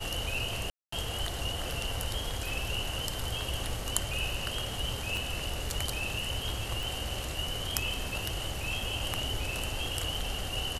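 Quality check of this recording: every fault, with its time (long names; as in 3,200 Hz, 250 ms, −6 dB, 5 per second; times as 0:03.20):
0:00.70–0:00.92: drop-out 224 ms
0:05.17: click
0:06.83: click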